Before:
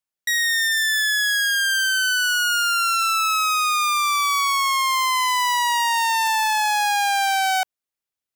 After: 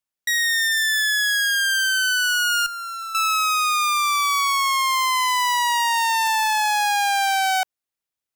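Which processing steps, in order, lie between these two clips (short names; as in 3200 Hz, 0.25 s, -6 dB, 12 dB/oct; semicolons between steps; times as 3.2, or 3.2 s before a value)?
2.66–3.15 tube stage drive 30 dB, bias 0.3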